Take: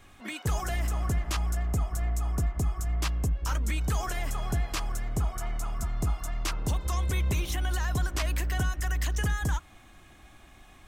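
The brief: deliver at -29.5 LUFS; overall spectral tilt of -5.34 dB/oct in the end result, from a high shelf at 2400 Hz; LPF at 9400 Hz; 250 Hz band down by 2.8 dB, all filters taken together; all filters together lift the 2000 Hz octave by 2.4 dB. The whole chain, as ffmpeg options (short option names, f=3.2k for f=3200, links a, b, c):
-af "lowpass=9.4k,equalizer=f=250:t=o:g=-4.5,equalizer=f=2k:t=o:g=6.5,highshelf=f=2.4k:g=-7.5,volume=1.5dB"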